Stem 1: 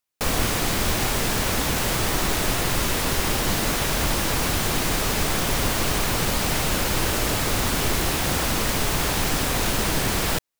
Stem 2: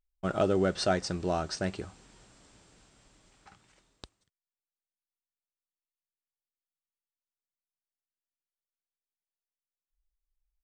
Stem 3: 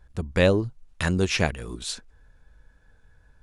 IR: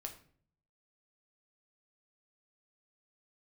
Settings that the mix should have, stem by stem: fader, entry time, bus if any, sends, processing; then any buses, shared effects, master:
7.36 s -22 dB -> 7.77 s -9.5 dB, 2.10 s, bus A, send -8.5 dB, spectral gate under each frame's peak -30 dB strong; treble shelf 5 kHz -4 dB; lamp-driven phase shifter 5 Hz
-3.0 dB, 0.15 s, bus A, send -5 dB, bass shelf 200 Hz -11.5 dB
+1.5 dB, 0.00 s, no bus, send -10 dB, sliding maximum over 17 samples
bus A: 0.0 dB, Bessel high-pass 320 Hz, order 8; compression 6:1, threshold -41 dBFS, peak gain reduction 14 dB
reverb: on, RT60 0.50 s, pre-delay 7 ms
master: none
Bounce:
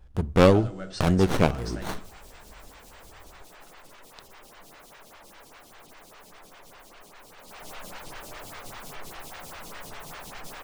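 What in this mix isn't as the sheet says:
stem 1: entry 2.10 s -> 1.10 s; stem 2: missing bass shelf 200 Hz -11.5 dB

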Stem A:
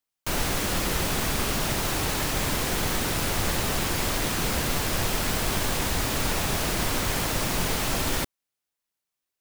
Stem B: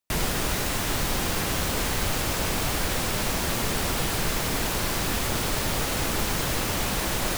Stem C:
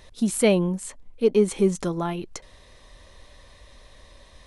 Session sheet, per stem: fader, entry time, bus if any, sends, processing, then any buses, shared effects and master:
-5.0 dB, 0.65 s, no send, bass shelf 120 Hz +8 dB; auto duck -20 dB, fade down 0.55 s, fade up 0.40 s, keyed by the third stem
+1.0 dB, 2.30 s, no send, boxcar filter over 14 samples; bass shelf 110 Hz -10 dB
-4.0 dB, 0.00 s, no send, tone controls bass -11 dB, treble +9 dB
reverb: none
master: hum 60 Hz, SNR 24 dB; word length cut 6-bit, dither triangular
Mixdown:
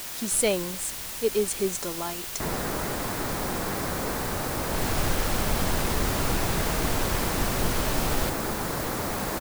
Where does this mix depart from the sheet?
stem A: entry 0.65 s -> 0.05 s; master: missing hum 60 Hz, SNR 24 dB

